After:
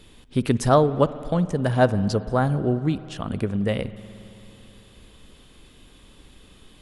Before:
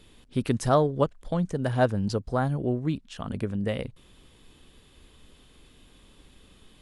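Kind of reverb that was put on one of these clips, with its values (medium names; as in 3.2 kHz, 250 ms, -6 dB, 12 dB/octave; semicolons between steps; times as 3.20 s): spring tank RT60 3.4 s, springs 55 ms, chirp 60 ms, DRR 15 dB; trim +4.5 dB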